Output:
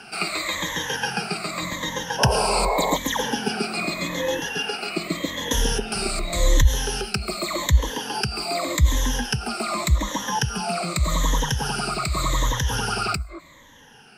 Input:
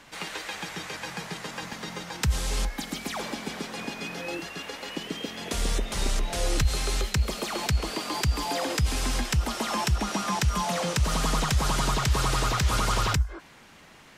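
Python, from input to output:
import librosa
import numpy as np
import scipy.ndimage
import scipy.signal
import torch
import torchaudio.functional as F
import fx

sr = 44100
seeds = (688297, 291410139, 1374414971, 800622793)

y = fx.spec_ripple(x, sr, per_octave=1.1, drift_hz=-0.85, depth_db=20)
y = fx.rider(y, sr, range_db=5, speed_s=2.0)
y = fx.spec_paint(y, sr, seeds[0], shape='noise', start_s=2.18, length_s=0.79, low_hz=380.0, high_hz=1100.0, level_db=-23.0)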